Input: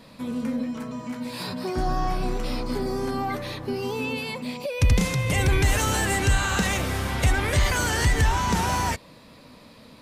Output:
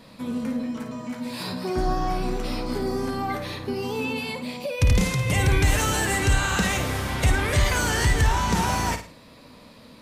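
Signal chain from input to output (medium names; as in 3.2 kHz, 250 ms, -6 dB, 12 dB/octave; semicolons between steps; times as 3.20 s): flutter echo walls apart 9.3 m, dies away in 0.37 s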